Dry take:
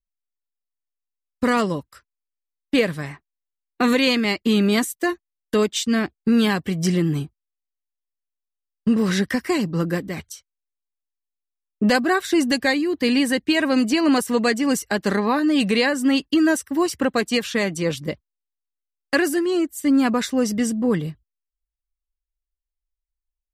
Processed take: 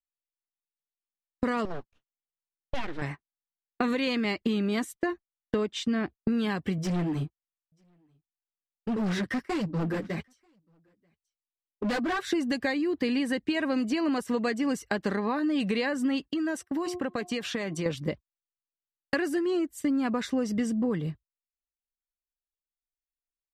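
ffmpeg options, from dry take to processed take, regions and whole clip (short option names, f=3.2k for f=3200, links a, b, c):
-filter_complex "[0:a]asettb=1/sr,asplit=3[a][b][c];[a]atrim=end=1.654[d];[b]atrim=start=1.65:end=3.02,asetpts=PTS-STARTPTS,afade=t=in:d=0.004:c=qsin,afade=t=out:st=1.366:d=0.004:c=qsin,lowpass=4k,acompressor=threshold=-32dB:ratio=1.5:attack=3.2:release=140:knee=1:detection=peak,aeval=exprs='abs(val(0))':c=same[e];[c]atrim=start=3.016[f];[d][e]acrossfade=d=0.004:c1=hsin:c2=qsin[g];[g][f]acrossfade=d=0.004:c1=qsin:c2=hsin,asettb=1/sr,asplit=3[h][i][j];[h]atrim=end=4.934[k];[i]atrim=start=4.93:end=6.15,asetpts=PTS-STARTPTS,afade=t=in:d=0.004:c=qsin,afade=t=out:st=1.216:d=0.004:c=qsin,aemphasis=mode=reproduction:type=cd,asoftclip=type=hard:threshold=-10.5dB[l];[j]atrim=start=6.146[m];[k][l]acrossfade=d=0.004:c1=hsin:c2=qsin[n];[n][m]acrossfade=d=0.004:c1=qsin:c2=hsin,asettb=1/sr,asplit=3[o][p][q];[o]atrim=end=6.784[r];[p]atrim=start=6.78:end=12.27,asetpts=PTS-STARTPTS,afade=t=in:d=0.004:c=qsin,afade=t=out:st=5.486:d=0.004:c=qsin,flanger=delay=1.1:depth=9:regen=-3:speed=1.4:shape=triangular,asoftclip=type=hard:threshold=-25dB,aecho=1:1:938:0.133,atrim=end_sample=242109[s];[q]atrim=start=12.266[t];[r][s]acrossfade=d=0.004:c1=hsin:c2=qsin[u];[u][t]acrossfade=d=0.004:c1=qsin:c2=hsin,asettb=1/sr,asplit=3[v][w][x];[v]atrim=end=16.284[y];[w]atrim=start=16.28:end=17.86,asetpts=PTS-STARTPTS,afade=t=in:d=0.004:c=qsin,afade=t=out:st=1.576:d=0.004:c=qsin,highpass=f=120:p=1,bandreject=f=357.2:t=h:w=4,bandreject=f=714.4:t=h:w=4,bandreject=f=1.0716k:t=h:w=4,acompressor=threshold=-26dB:ratio=5:attack=3.2:release=140:knee=1:detection=peak[z];[x]atrim=start=17.856[aa];[y][z]acrossfade=d=0.004:c1=hsin:c2=qsin[ab];[ab][aa]acrossfade=d=0.004:c1=qsin:c2=hsin,agate=range=-19dB:threshold=-34dB:ratio=16:detection=peak,aemphasis=mode=reproduction:type=50kf,acompressor=threshold=-25dB:ratio=6"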